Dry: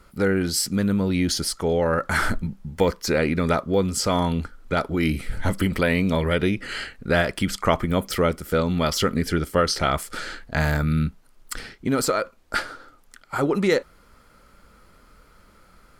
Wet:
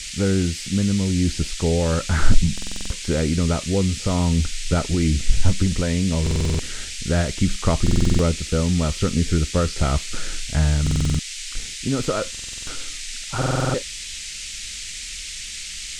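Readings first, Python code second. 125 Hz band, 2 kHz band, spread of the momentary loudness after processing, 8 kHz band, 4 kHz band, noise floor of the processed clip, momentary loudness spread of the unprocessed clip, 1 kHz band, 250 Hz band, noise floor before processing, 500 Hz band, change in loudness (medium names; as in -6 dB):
+6.0 dB, -4.5 dB, 10 LU, +5.0 dB, +2.5 dB, -33 dBFS, 8 LU, -4.5 dB, +1.0 dB, -55 dBFS, -3.0 dB, +0.5 dB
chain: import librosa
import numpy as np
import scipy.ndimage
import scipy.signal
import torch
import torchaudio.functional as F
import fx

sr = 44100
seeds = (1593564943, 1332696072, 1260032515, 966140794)

y = fx.riaa(x, sr, side='playback')
y = fx.rider(y, sr, range_db=5, speed_s=0.5)
y = fx.dmg_noise_band(y, sr, seeds[0], low_hz=2000.0, high_hz=8400.0, level_db=-28.0)
y = fx.buffer_glitch(y, sr, at_s=(2.53, 6.22, 7.82, 10.82, 12.3, 13.37), block=2048, repeats=7)
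y = F.gain(torch.from_numpy(y), -5.5).numpy()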